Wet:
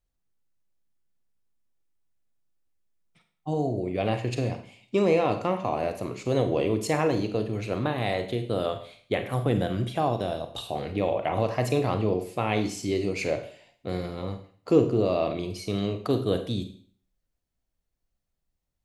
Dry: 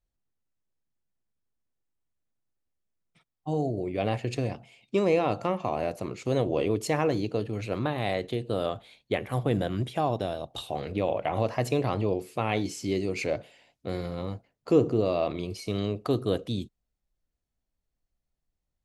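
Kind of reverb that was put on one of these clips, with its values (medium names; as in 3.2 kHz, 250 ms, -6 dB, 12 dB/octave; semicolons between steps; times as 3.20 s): Schroeder reverb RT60 0.5 s, combs from 33 ms, DRR 7.5 dB; trim +1 dB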